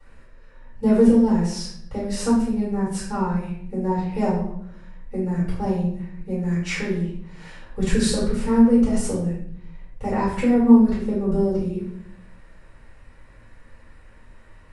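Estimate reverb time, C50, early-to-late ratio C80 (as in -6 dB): 0.65 s, 2.0 dB, 6.5 dB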